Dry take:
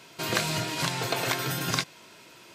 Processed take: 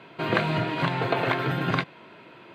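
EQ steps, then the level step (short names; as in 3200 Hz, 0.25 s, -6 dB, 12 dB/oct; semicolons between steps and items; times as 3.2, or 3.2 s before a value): HPF 110 Hz; air absorption 450 m; notch 5300 Hz, Q 6.4; +7.0 dB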